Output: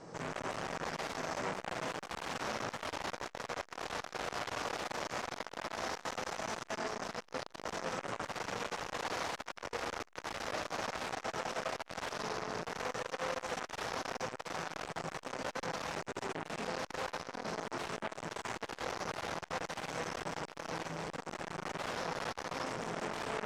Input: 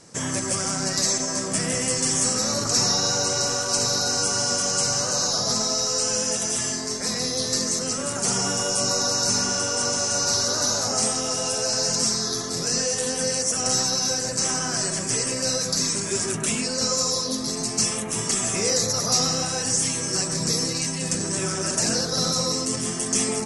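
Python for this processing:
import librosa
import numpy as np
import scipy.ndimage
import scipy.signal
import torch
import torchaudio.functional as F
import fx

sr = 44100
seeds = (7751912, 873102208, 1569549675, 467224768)

y = fx.room_shoebox(x, sr, seeds[0], volume_m3=190.0, walls='furnished', distance_m=0.6)
y = 10.0 ** (-25.5 / 20.0) * (np.abs((y / 10.0 ** (-25.5 / 20.0) + 3.0) % 4.0 - 2.0) - 1.0)
y = scipy.signal.sosfilt(scipy.signal.butter(2, 5900.0, 'lowpass', fs=sr, output='sos'), y)
y = fx.high_shelf(y, sr, hz=3000.0, db=-9.0)
y = fx.rider(y, sr, range_db=10, speed_s=0.5)
y = fx.peak_eq(y, sr, hz=730.0, db=8.5, octaves=2.3)
y = y + 10.0 ** (-9.0 / 20.0) * np.pad(y, (int(83 * sr / 1000.0), 0))[:len(y)]
y = fx.transformer_sat(y, sr, knee_hz=1900.0)
y = F.gain(torch.from_numpy(y), -3.0).numpy()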